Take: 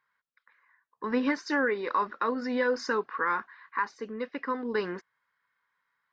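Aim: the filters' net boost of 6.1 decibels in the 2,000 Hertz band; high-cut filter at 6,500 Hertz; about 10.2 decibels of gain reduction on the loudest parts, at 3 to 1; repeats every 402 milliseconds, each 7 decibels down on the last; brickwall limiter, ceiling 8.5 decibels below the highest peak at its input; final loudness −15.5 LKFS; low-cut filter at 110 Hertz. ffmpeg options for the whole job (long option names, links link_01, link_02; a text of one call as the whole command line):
ffmpeg -i in.wav -af "highpass=110,lowpass=6500,equalizer=frequency=2000:width_type=o:gain=8,acompressor=threshold=-34dB:ratio=3,alimiter=level_in=3dB:limit=-24dB:level=0:latency=1,volume=-3dB,aecho=1:1:402|804|1206|1608|2010:0.447|0.201|0.0905|0.0407|0.0183,volume=22dB" out.wav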